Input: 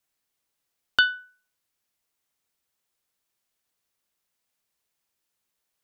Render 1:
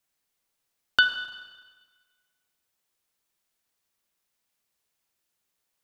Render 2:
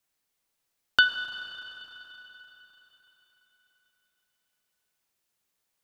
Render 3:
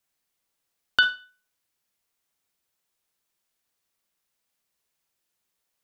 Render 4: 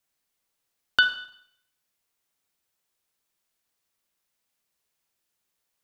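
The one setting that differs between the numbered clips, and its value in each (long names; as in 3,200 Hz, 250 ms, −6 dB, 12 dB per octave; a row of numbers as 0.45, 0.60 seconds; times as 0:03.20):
four-comb reverb, RT60: 1.4, 4, 0.31, 0.67 seconds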